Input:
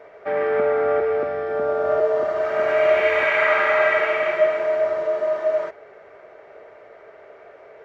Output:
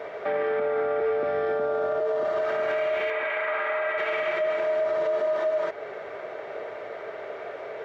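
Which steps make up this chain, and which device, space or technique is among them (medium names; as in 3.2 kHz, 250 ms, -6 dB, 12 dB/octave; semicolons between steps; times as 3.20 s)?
broadcast voice chain (high-pass 88 Hz; de-esser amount 80%; compression 3:1, threshold -30 dBFS, peak gain reduction 13 dB; peaking EQ 3.6 kHz +6 dB 0.48 oct; peak limiter -27.5 dBFS, peak gain reduction 9 dB); 3.10–3.98 s: tone controls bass -9 dB, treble -15 dB; trim +8.5 dB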